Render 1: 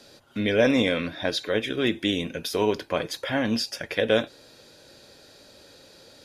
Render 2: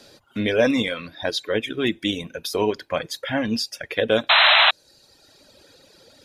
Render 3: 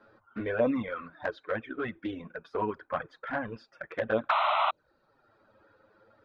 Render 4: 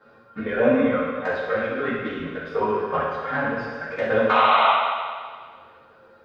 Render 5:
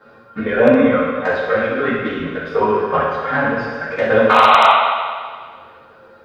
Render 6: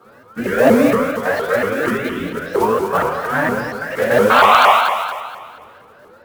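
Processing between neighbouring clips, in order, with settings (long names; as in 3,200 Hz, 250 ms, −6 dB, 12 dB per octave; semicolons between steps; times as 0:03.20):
reverb reduction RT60 1.9 s; sound drawn into the spectrogram noise, 0:04.29–0:04.71, 580–4,100 Hz −17 dBFS; level +2.5 dB
low-pass with resonance 1,300 Hz, resonance Q 3.7; flanger swept by the level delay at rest 9.8 ms, full sweep at −12 dBFS; level −7 dB
convolution reverb RT60 1.8 s, pre-delay 3 ms, DRR −9.5 dB
wave folding −8 dBFS; level +7 dB
one scale factor per block 5 bits; pitch modulation by a square or saw wave saw up 4.3 Hz, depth 250 cents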